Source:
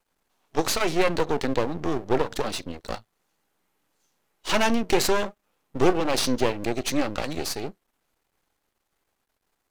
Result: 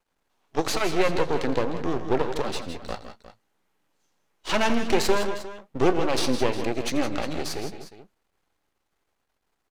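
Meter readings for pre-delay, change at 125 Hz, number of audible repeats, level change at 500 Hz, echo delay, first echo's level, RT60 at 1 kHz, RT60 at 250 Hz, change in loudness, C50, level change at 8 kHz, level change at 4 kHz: none, 0.0 dB, 3, 0.0 dB, 84 ms, -17.5 dB, none, none, -1.0 dB, none, -3.5 dB, -1.5 dB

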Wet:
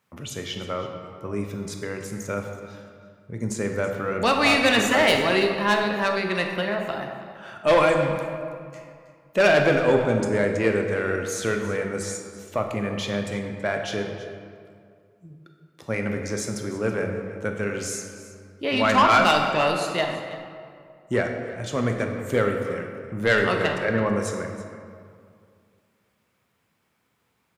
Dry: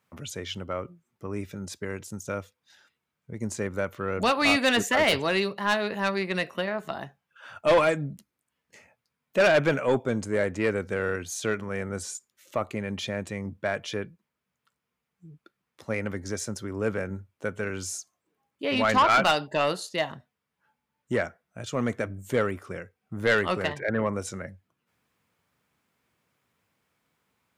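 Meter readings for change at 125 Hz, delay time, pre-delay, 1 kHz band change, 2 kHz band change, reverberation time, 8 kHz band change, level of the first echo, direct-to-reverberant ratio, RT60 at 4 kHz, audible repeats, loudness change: +4.5 dB, 0.327 s, 19 ms, +4.0 dB, +3.5 dB, 2.2 s, +3.0 dB, -16.0 dB, 3.0 dB, 1.3 s, 1, +3.5 dB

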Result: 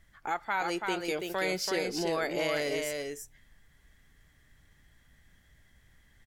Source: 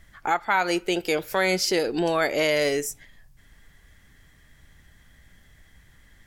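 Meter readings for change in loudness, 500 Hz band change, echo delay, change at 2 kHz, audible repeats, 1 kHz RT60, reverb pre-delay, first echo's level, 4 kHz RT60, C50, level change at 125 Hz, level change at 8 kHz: -8.0 dB, -7.5 dB, 0.333 s, -7.5 dB, 1, none, none, -4.0 dB, none, none, -7.5 dB, -7.5 dB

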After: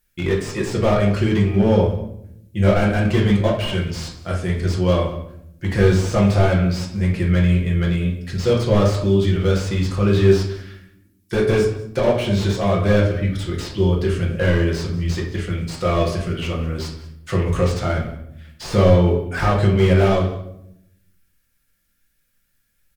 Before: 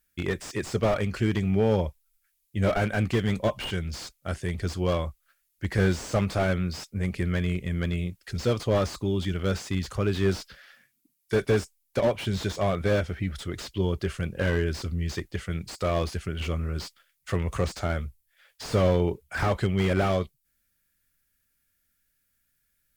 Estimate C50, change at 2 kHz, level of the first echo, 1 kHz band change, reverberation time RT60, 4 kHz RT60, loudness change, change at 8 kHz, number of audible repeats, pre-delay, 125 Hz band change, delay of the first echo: 6.5 dB, +6.0 dB, -17.5 dB, +7.0 dB, 0.75 s, 0.60 s, +8.5 dB, +5.0 dB, 1, 6 ms, +9.5 dB, 0.19 s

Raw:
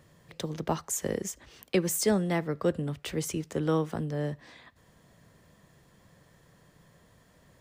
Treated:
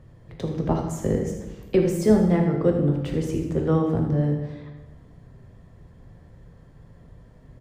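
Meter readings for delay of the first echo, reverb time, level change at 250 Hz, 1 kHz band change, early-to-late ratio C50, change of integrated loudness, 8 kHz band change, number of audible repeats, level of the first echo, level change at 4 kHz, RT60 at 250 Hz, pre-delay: 79 ms, 1.1 s, +9.0 dB, +3.5 dB, 4.0 dB, +7.5 dB, -8.0 dB, 1, -9.0 dB, -4.5 dB, 1.3 s, 5 ms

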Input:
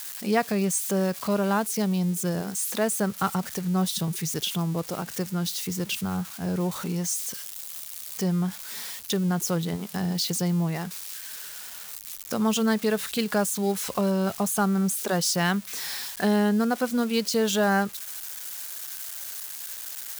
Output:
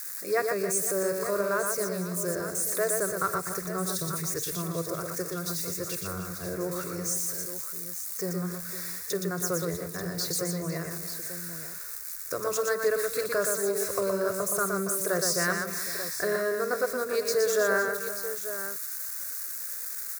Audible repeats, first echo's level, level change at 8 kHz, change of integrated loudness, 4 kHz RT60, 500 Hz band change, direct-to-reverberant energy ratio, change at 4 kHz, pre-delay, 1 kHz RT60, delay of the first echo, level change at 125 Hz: 6, -19.5 dB, 0.0 dB, -2.0 dB, none, +1.0 dB, none, -6.0 dB, none, none, 50 ms, -8.5 dB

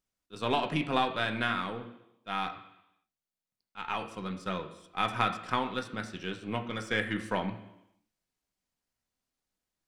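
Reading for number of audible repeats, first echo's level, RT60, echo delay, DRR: none, none, 0.85 s, none, 4.5 dB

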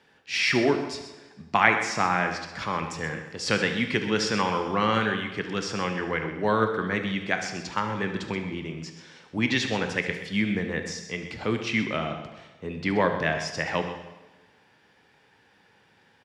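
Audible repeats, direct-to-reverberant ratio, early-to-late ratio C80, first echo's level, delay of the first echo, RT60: 2, 5.0 dB, 8.5 dB, -14.0 dB, 72 ms, 1.2 s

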